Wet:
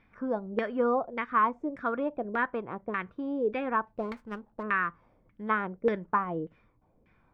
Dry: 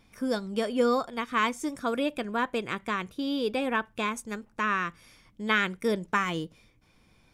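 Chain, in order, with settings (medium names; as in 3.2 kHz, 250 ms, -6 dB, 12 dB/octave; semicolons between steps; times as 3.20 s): LFO low-pass saw down 1.7 Hz 480–2100 Hz; 3.87–4.63 s: sliding maximum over 5 samples; trim -4 dB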